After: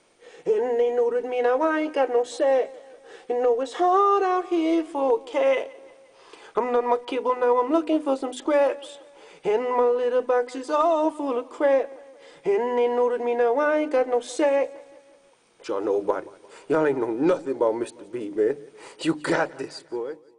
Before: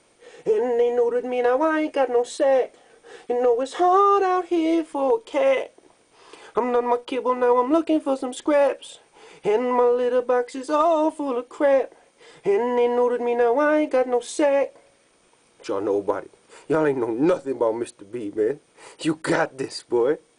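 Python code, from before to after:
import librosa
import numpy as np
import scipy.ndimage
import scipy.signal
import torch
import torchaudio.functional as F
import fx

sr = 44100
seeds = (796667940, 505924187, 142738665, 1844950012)

p1 = fx.fade_out_tail(x, sr, length_s=1.23)
p2 = scipy.signal.sosfilt(scipy.signal.butter(2, 8500.0, 'lowpass', fs=sr, output='sos'), p1)
p3 = fx.peak_eq(p2, sr, hz=76.0, db=-5.5, octaves=1.4)
p4 = fx.hum_notches(p3, sr, base_hz=50, count=6)
p5 = fx.rider(p4, sr, range_db=3, speed_s=0.5)
p6 = p4 + (p5 * 10.0 ** (-2.5 / 20.0))
p7 = fx.echo_feedback(p6, sr, ms=175, feedback_pct=53, wet_db=-22.5)
y = p7 * 10.0 ** (-6.0 / 20.0)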